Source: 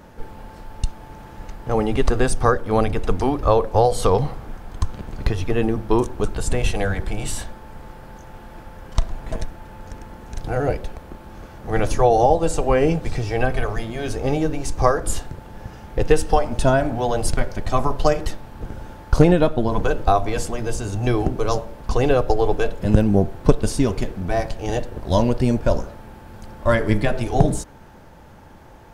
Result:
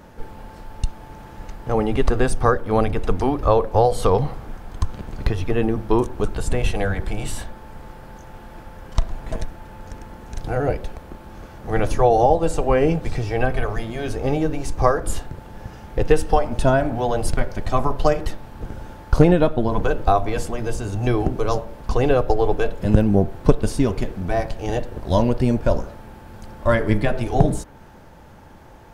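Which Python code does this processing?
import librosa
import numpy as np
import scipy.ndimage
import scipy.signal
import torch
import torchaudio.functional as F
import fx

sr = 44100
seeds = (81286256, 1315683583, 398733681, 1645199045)

y = fx.dynamic_eq(x, sr, hz=6800.0, q=0.7, threshold_db=-43.0, ratio=4.0, max_db=-5)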